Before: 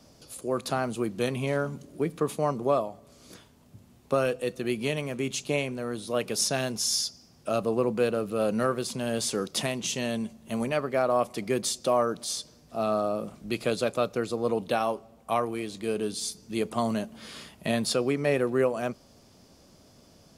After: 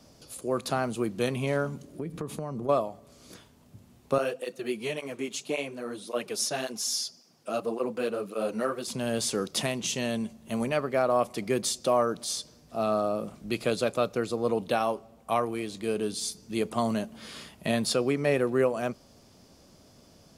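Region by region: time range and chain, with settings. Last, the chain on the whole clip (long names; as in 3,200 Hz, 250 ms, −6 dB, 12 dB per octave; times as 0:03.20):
0:01.99–0:02.69: low-shelf EQ 300 Hz +10 dB + downward compressor, threshold −31 dBFS + one half of a high-frequency compander decoder only
0:04.18–0:08.88: high-pass filter 220 Hz + through-zero flanger with one copy inverted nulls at 1.8 Hz, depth 7.5 ms
whole clip: no processing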